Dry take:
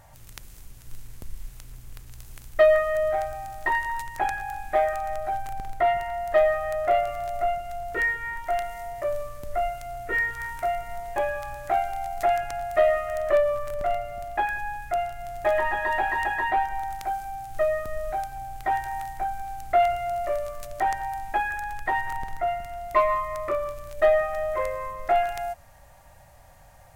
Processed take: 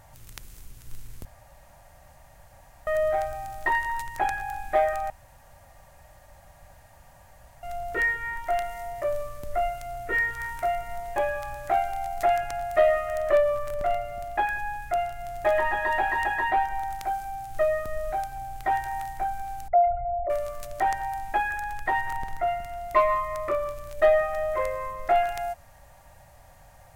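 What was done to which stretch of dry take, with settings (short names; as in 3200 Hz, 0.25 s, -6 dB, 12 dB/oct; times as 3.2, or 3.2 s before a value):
1.25–2.87 room tone
5.1–7.63 room tone
19.68–20.3 formant sharpening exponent 3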